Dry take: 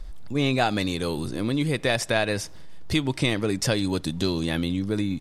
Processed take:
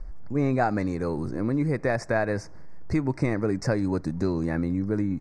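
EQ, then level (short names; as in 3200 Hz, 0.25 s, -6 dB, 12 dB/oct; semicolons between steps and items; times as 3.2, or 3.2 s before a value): Butterworth band-stop 3200 Hz, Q 1; air absorption 92 m; high shelf 4900 Hz -6 dB; 0.0 dB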